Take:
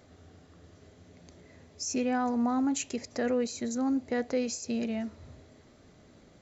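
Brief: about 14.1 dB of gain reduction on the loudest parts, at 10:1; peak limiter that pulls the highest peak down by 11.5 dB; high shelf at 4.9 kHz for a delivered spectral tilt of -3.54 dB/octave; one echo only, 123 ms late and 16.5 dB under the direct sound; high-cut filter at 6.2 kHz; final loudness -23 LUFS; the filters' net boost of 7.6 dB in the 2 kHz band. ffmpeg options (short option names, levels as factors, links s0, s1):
-af "lowpass=6200,equalizer=f=2000:t=o:g=8.5,highshelf=f=4900:g=6.5,acompressor=threshold=0.0112:ratio=10,alimiter=level_in=3.55:limit=0.0631:level=0:latency=1,volume=0.282,aecho=1:1:123:0.15,volume=13.3"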